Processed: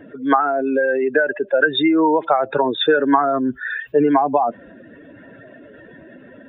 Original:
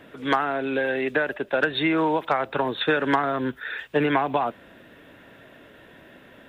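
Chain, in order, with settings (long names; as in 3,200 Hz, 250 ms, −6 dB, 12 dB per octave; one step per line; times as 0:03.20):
expanding power law on the bin magnitudes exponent 2.1
level +7 dB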